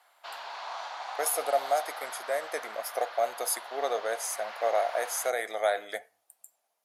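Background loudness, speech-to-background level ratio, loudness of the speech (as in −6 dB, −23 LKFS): −40.5 LKFS, 9.5 dB, −31.0 LKFS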